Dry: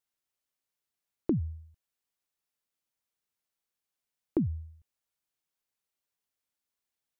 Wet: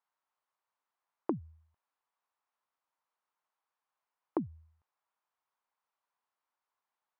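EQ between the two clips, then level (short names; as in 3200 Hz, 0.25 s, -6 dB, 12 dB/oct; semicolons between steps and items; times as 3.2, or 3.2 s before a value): band-pass 1000 Hz, Q 2.6; +12.5 dB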